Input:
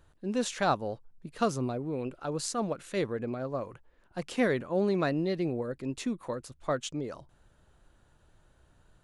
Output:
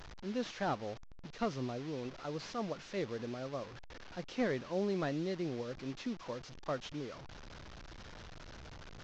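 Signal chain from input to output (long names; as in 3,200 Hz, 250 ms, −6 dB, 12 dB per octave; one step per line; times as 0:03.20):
linear delta modulator 32 kbit/s, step −37 dBFS
level −7 dB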